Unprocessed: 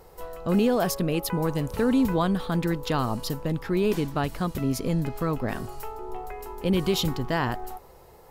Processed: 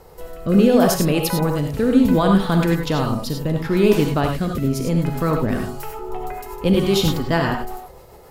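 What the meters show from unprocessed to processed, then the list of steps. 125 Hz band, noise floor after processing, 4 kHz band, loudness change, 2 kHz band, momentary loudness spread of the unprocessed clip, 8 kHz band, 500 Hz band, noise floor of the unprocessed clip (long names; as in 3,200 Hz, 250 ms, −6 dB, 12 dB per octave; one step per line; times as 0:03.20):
+7.5 dB, −44 dBFS, +6.0 dB, +7.5 dB, +6.5 dB, 15 LU, +7.0 dB, +7.5 dB, −51 dBFS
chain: rotating-speaker cabinet horn 0.7 Hz, later 7.5 Hz, at 0:05.14
reverb whose tail is shaped and stops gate 120 ms rising, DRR 2.5 dB
level +7.5 dB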